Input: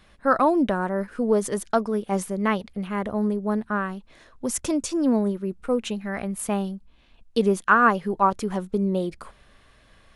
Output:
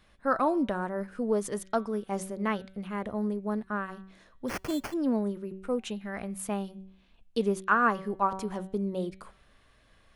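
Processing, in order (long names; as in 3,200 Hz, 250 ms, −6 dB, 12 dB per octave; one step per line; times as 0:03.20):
hum removal 190.7 Hz, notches 22
0:04.48–0:04.94: sample-rate reduction 3,800 Hz, jitter 0%
level −6.5 dB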